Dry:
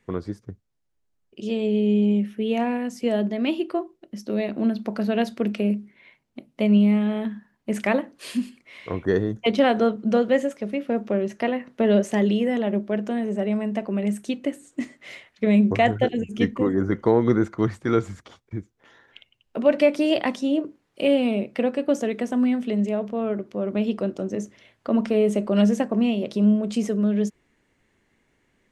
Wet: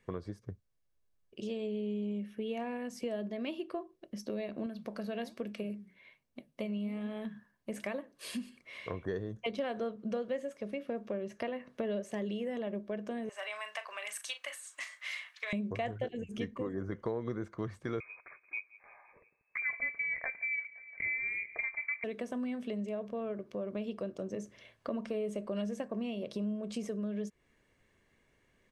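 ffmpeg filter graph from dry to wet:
ffmpeg -i in.wav -filter_complex "[0:a]asettb=1/sr,asplit=3[link_01][link_02][link_03];[link_01]atrim=end=4.664[link_04];[link_02]atrim=start=4.66:end=8.33,asetpts=PTS-STARTPTS,afade=type=in:duration=0.004:curve=qsin,afade=type=out:start_time=3.666:duration=0.004:curve=qsin,highshelf=frequency=6100:gain=5.5,flanger=delay=3.5:depth=7.4:regen=81:speed=1.2:shape=sinusoidal[link_05];[link_03]atrim=start=8.326[link_06];[link_04][link_05]acrossfade=duration=0.004:curve1=hsin:curve2=qsin[link_07];[link_07][link_06]acrossfade=duration=0.004:curve1=qsin:curve2=hsin,asettb=1/sr,asplit=3[link_08][link_09][link_10];[link_08]atrim=end=13.294[link_11];[link_09]atrim=start=13.29:end=15.53,asetpts=PTS-STARTPTS,afade=type=in:duration=0.004:curve=qsin,afade=type=out:start_time=2.236:duration=0.004:curve=qsin,highpass=frequency=1000:width=0.5412,highpass=frequency=1000:width=1.3066,asplit=2[link_12][link_13];[link_13]adelay=38,volume=-11dB[link_14];[link_12][link_14]amix=inputs=2:normalize=0,atrim=end_sample=98784,aeval=exprs='0.158*sin(PI/2*1.41*val(0)/0.158)':channel_layout=same[link_15];[link_10]atrim=start=15.526[link_16];[link_11][link_15]acrossfade=duration=0.004:curve1=hsin:curve2=qsin[link_17];[link_17][link_16]acrossfade=duration=0.004:curve1=qsin:curve2=hsin,asettb=1/sr,asplit=3[link_18][link_19][link_20];[link_18]atrim=end=18.004[link_21];[link_19]atrim=start=18:end=22.04,asetpts=PTS-STARTPTS,afade=type=in:duration=0.004:curve=qsin,afade=type=out:start_time=4.036:duration=0.004:curve=qsin,lowpass=frequency=2200:width_type=q:width=0.5098,lowpass=frequency=2200:width_type=q:width=0.6013,lowpass=frequency=2200:width_type=q:width=0.9,lowpass=frequency=2200:width_type=q:width=2.563,afreqshift=-2600,aecho=1:1:173|346|519|692:0.0708|0.0418|0.0246|0.0145,atrim=end_sample=178164[link_22];[link_20]atrim=start=22.036[link_23];[link_21][link_22]acrossfade=duration=0.004:curve1=hsin:curve2=qsin[link_24];[link_24][link_23]acrossfade=duration=0.004:curve1=qsin:curve2=hsin,bandreject=frequency=7100:width=21,aecho=1:1:1.8:0.31,acompressor=threshold=-33dB:ratio=3,volume=-4dB" out.wav

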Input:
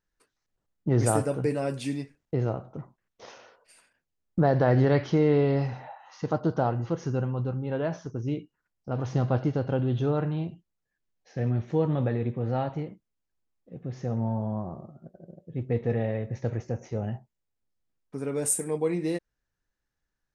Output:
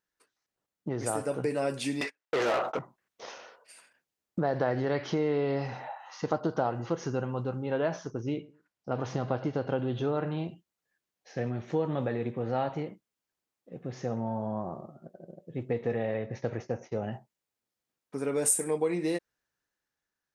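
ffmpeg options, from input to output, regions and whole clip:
ffmpeg -i in.wav -filter_complex "[0:a]asettb=1/sr,asplit=3[link_01][link_02][link_03];[link_01]atrim=end=2.014[link_04];[link_02]atrim=start=2.01:end=2.79,asetpts=PTS-STARTPTS,afade=type=in:duration=0.004:curve=qsin,afade=type=out:start_time=0.776:duration=0.004:curve=qsin,highpass=frequency=610:poles=1,agate=range=-31dB:threshold=-59dB:ratio=16:release=100:detection=peak,asplit=2[link_05][link_06];[link_06]highpass=frequency=720:poles=1,volume=31dB,asoftclip=type=tanh:threshold=-21.5dB[link_07];[link_05][link_07]amix=inputs=2:normalize=0,lowpass=frequency=3200:poles=1,volume=-6dB[link_08];[link_03]atrim=start=2.786[link_09];[link_04][link_08]acrossfade=duration=0.004:curve1=hsin:curve2=qsin[link_10];[link_10][link_09]acrossfade=duration=0.004:curve1=qsin:curve2=hsin,asettb=1/sr,asplit=3[link_11][link_12][link_13];[link_11]atrim=end=8.104[link_14];[link_12]atrim=start=8.1:end=10.38,asetpts=PTS-STARTPTS,afade=type=in:duration=0.004:curve=qsin,afade=type=out:start_time=2.276:duration=0.004:curve=qsin,highshelf=frequency=9800:gain=-11,asplit=2[link_15][link_16];[link_16]adelay=111,lowpass=frequency=1100:poles=1,volume=-21dB,asplit=2[link_17][link_18];[link_18]adelay=111,lowpass=frequency=1100:poles=1,volume=0.26[link_19];[link_15][link_17][link_19]amix=inputs=3:normalize=0,atrim=end_sample=100548[link_20];[link_13]atrim=start=10.376[link_21];[link_14][link_20]acrossfade=duration=0.004:curve1=hsin:curve2=qsin[link_22];[link_22][link_21]acrossfade=duration=0.004:curve1=qsin:curve2=hsin,asettb=1/sr,asplit=3[link_23][link_24][link_25];[link_23]atrim=end=16.144[link_26];[link_24]atrim=start=16.14:end=17.13,asetpts=PTS-STARTPTS,afade=type=in:duration=0.004:curve=qsin,afade=type=out:start_time=0.986:duration=0.004:curve=qsin,lowpass=frequency=6000:width=0.5412,lowpass=frequency=6000:width=1.3066,agate=range=-33dB:threshold=-44dB:ratio=3:release=100:detection=peak[link_27];[link_25]atrim=start=17.126[link_28];[link_26][link_27]acrossfade=duration=0.004:curve1=hsin:curve2=qsin[link_29];[link_29][link_28]acrossfade=duration=0.004:curve1=qsin:curve2=hsin,acompressor=threshold=-25dB:ratio=6,highpass=frequency=350:poles=1,dynaudnorm=framelen=260:gausssize=9:maxgain=4dB" out.wav

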